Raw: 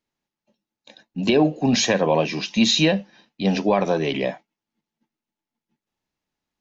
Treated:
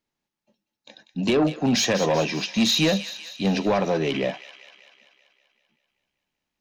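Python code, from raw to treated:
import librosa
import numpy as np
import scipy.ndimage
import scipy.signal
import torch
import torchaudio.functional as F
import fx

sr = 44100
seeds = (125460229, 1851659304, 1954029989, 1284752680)

p1 = 10.0 ** (-14.0 / 20.0) * np.tanh(x / 10.0 ** (-14.0 / 20.0))
y = p1 + fx.echo_wet_highpass(p1, sr, ms=193, feedback_pct=61, hz=1700.0, wet_db=-10, dry=0)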